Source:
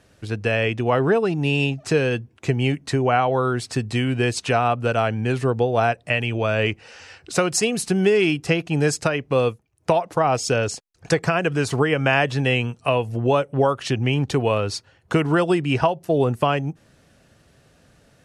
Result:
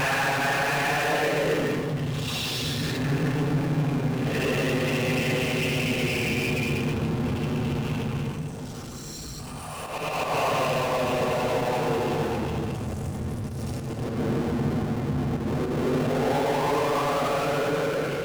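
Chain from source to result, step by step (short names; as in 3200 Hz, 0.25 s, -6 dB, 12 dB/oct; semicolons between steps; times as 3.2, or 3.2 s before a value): Paulstretch 14×, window 0.05 s, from 12.14; harmonic-percussive split harmonic -17 dB; auto swell 0.128 s; treble ducked by the level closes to 2100 Hz, closed at -31 dBFS; power-law curve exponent 0.35; on a send: reverb RT60 0.45 s, pre-delay 3 ms, DRR 6.5 dB; on the sum: gain -5.5 dB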